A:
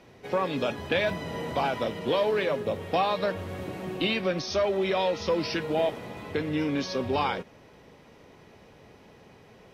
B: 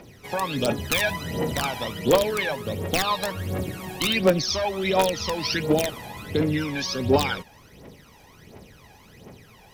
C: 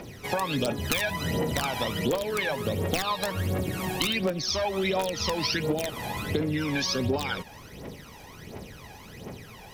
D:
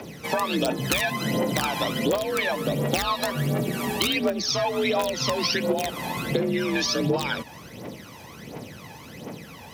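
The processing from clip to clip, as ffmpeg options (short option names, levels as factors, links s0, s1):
-af "aemphasis=mode=production:type=50kf,aeval=exprs='(mod(5.96*val(0)+1,2)-1)/5.96':c=same,aphaser=in_gain=1:out_gain=1:delay=1.3:decay=0.71:speed=1.4:type=triangular"
-af "acompressor=threshold=0.0355:ratio=10,volume=1.78"
-af "afreqshift=51,volume=1.41"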